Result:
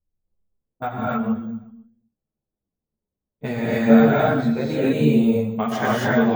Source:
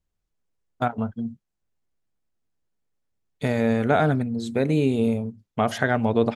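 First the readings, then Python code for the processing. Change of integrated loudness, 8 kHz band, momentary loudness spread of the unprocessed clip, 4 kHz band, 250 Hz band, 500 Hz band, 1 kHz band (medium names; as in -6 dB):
+4.5 dB, no reading, 10 LU, +2.5 dB, +6.0 dB, +3.0 dB, +2.0 dB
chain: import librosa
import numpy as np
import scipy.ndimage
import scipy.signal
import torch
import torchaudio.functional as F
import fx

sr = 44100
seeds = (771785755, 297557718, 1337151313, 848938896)

y = fx.env_lowpass(x, sr, base_hz=590.0, full_db=-20.0)
y = fx.echo_feedback(y, sr, ms=125, feedback_pct=41, wet_db=-14.0)
y = fx.rev_gated(y, sr, seeds[0], gate_ms=310, shape='rising', drr_db=-5.5)
y = np.repeat(scipy.signal.resample_poly(y, 1, 2), 2)[:len(y)]
y = fx.ensemble(y, sr)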